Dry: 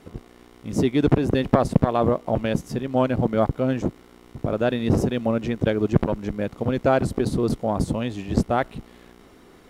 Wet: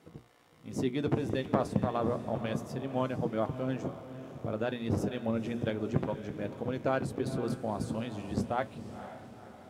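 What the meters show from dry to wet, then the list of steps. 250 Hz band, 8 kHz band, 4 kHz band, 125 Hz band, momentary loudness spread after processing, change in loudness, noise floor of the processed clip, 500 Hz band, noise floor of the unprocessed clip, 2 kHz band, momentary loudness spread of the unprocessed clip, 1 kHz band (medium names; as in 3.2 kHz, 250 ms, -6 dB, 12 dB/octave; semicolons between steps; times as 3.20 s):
-10.5 dB, -9.5 dB, -9.5 dB, -11.0 dB, 11 LU, -10.5 dB, -57 dBFS, -10.5 dB, -51 dBFS, -9.0 dB, 9 LU, -9.5 dB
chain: high-pass 88 Hz; hum notches 60/120/180/240/300/360/420 Hz; flange 0.3 Hz, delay 6.1 ms, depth 3.8 ms, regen +63%; on a send: echo that smears into a reverb 501 ms, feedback 50%, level -12 dB; on the sum: trim -5.5 dB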